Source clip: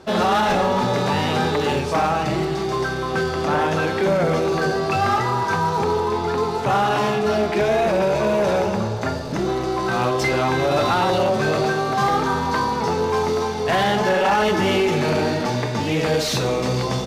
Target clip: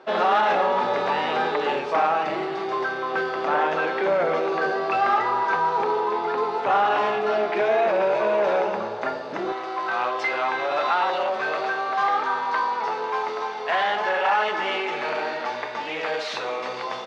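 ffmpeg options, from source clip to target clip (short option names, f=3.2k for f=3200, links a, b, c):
-af "asetnsamples=n=441:p=0,asendcmd='9.52 highpass f 750',highpass=460,lowpass=2.7k"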